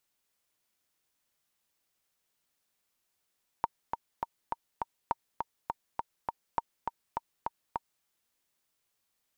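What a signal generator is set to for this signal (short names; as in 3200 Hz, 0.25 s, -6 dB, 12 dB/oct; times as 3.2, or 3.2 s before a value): metronome 204 bpm, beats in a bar 5, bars 3, 927 Hz, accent 4.5 dB -14 dBFS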